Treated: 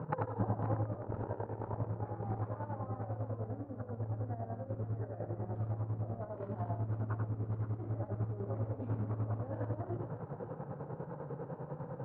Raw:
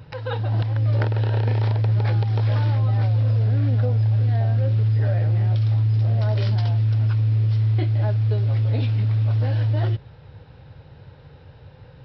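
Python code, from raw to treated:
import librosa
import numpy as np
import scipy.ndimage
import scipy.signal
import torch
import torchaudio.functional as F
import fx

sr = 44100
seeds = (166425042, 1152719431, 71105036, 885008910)

p1 = scipy.signal.sosfilt(scipy.signal.cheby1(3, 1.0, [160.0, 1200.0], 'bandpass', fs=sr, output='sos'), x)
p2 = fx.over_compress(p1, sr, threshold_db=-37.0, ratio=-0.5)
p3 = fx.chopper(p2, sr, hz=10.0, depth_pct=60, duty_pct=45)
p4 = p3 + fx.echo_multitap(p3, sr, ms=(90, 526), db=(-4.5, -12.5), dry=0)
y = p4 * 10.0 ** (2.5 / 20.0)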